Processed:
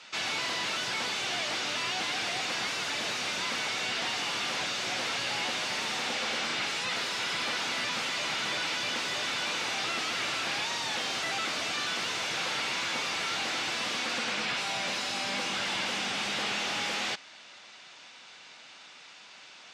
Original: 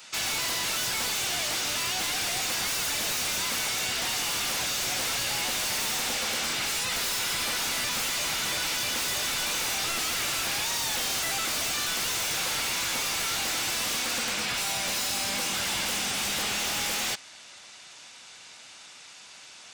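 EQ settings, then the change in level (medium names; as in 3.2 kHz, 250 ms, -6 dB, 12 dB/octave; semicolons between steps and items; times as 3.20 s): high-pass 150 Hz 12 dB/octave; low-pass 4.2 kHz 12 dB/octave; 0.0 dB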